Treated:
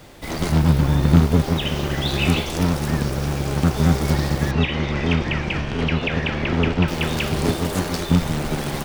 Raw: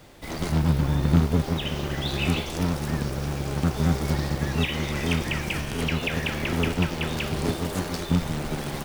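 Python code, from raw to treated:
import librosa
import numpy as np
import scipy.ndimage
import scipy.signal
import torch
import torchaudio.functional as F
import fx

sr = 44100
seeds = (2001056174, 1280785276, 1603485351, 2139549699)

y = fx.air_absorb(x, sr, metres=160.0, at=(4.51, 6.88))
y = y * librosa.db_to_amplitude(5.5)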